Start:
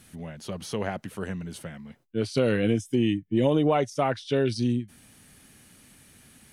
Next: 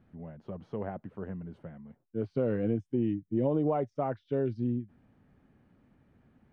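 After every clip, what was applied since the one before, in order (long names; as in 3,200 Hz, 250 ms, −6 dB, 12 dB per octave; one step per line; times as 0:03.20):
low-pass filter 1,000 Hz 12 dB per octave
level −5.5 dB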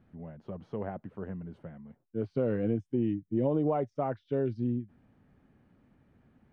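no processing that can be heard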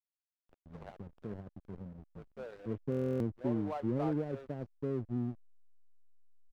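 three-band delay without the direct sound mids, highs, lows 100/510 ms, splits 560/2,800 Hz
slack as between gear wheels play −36 dBFS
buffer that repeats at 0:02.90, samples 1,024, times 12
level −3.5 dB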